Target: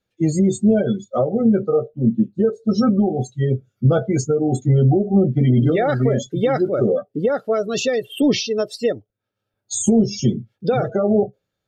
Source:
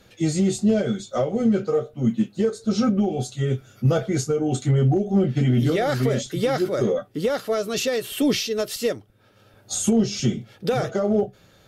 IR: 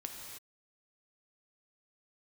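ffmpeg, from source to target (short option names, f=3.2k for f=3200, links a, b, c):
-af "afftdn=nr=29:nf=-29,volume=4dB"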